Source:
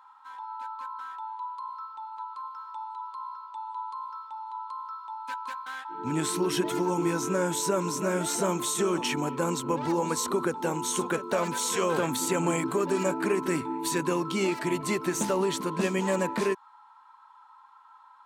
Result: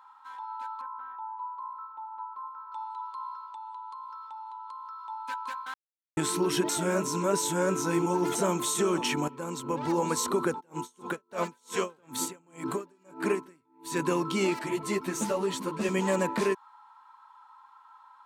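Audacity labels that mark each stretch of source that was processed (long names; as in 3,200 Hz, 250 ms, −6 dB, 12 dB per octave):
0.810000	2.720000	low-pass filter 1,300 Hz
3.460000	5.000000	downward compressor, threshold −38 dBFS
5.740000	6.170000	silence
6.690000	8.350000	reverse
9.280000	9.990000	fade in, from −14 dB
10.590000	14.040000	tremolo with a sine in dB 3.8 Hz → 1.2 Hz, depth 38 dB
14.590000	15.890000	string-ensemble chorus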